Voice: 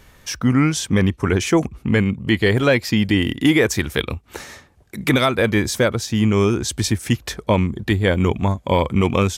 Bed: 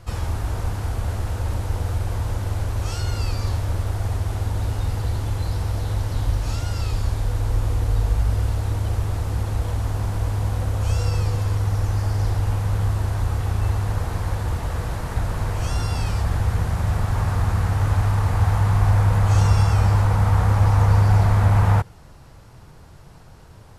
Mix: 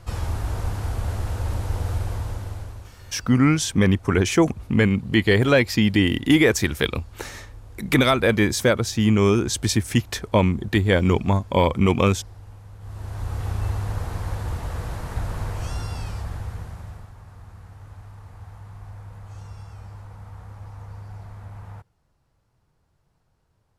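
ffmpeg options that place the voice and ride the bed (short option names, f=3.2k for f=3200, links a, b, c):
-filter_complex "[0:a]adelay=2850,volume=-1dB[a];[1:a]volume=15.5dB,afade=t=out:st=1.97:d=0.95:silence=0.105925,afade=t=in:st=12.8:d=0.66:silence=0.141254,afade=t=out:st=15.39:d=1.75:silence=0.112202[b];[a][b]amix=inputs=2:normalize=0"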